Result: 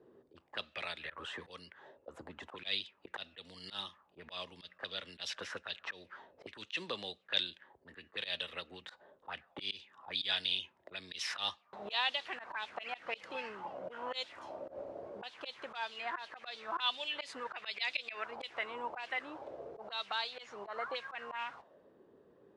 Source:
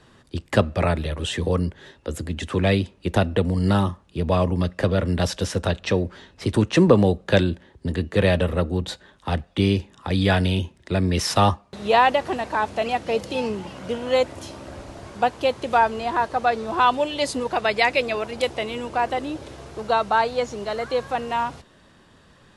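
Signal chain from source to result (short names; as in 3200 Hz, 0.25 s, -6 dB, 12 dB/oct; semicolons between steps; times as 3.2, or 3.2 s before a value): auto-wah 390–3600 Hz, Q 3.4, up, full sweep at -17.5 dBFS; auto swell 0.104 s; gain +1 dB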